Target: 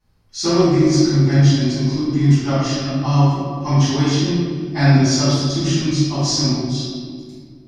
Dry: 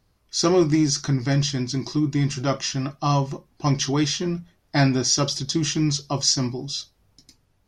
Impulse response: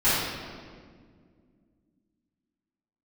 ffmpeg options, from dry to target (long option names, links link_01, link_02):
-filter_complex "[1:a]atrim=start_sample=2205[link_01];[0:a][link_01]afir=irnorm=-1:irlink=0,volume=-13dB"